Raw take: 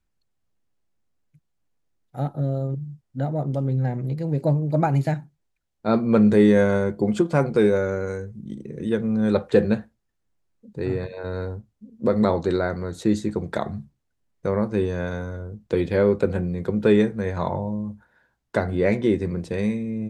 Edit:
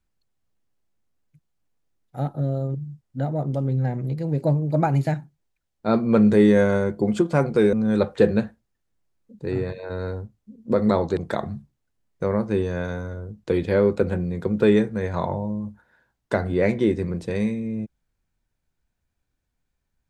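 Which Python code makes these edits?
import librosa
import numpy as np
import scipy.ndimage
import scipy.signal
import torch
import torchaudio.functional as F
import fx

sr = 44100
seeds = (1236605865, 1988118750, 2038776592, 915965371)

y = fx.edit(x, sr, fx.cut(start_s=7.73, length_s=1.34),
    fx.cut(start_s=12.51, length_s=0.89), tone=tone)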